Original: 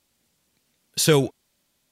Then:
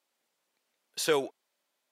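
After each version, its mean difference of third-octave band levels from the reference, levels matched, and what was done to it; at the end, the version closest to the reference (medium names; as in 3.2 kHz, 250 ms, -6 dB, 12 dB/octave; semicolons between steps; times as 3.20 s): 4.5 dB: high-pass 540 Hz 12 dB/octave; treble shelf 2.5 kHz -10 dB; trim -2.5 dB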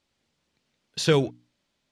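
3.0 dB: low-pass 4.9 kHz 12 dB/octave; hum notches 60/120/180/240/300 Hz; trim -2.5 dB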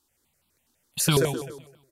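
7.5 dB: feedback delay 129 ms, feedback 38%, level -6 dB; stepped phaser 12 Hz 580–1800 Hz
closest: second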